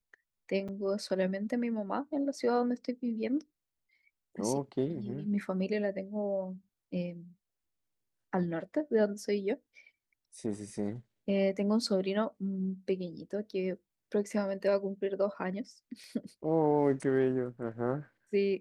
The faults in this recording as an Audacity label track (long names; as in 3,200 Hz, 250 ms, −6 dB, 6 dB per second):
0.680000	0.690000	drop-out 5.9 ms
16.040000	16.040000	click −40 dBFS